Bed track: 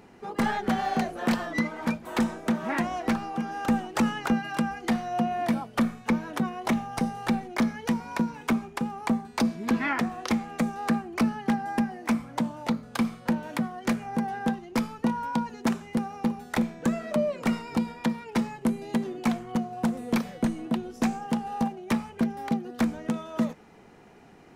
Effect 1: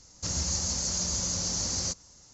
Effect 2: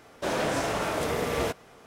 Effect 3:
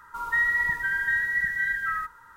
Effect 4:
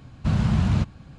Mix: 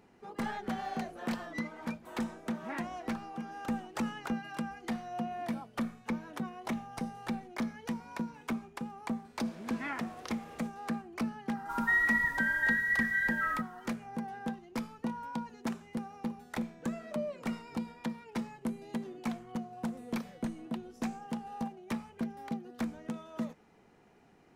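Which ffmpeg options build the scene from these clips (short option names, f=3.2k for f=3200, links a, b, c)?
-filter_complex "[0:a]volume=-10dB[a];[2:a]acompressor=threshold=-37dB:ratio=6:attack=3.2:release=140:knee=1:detection=peak,atrim=end=1.86,asetpts=PTS-STARTPTS,volume=-14dB,afade=t=in:d=0.004:c=hsin,afade=t=out:st=1.856:d=0.004:c=hsin,adelay=9160[b];[3:a]atrim=end=2.36,asetpts=PTS-STARTPTS,volume=-4dB,afade=t=in:d=0.004:c=hsin,afade=t=out:st=2.356:d=0.004:c=hsin,adelay=11550[c];[a][b][c]amix=inputs=3:normalize=0"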